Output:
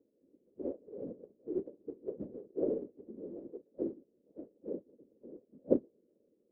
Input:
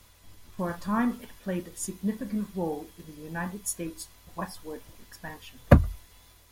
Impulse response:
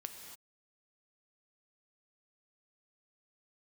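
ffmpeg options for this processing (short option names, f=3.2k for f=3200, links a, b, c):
-af "afftfilt=real='re*between(b*sr/4096,250,520)':imag='im*between(b*sr/4096,250,520)':win_size=4096:overlap=0.75,afftfilt=real='hypot(re,im)*cos(2*PI*random(0))':imag='hypot(re,im)*sin(2*PI*random(1))':win_size=512:overlap=0.75,volume=5.5dB"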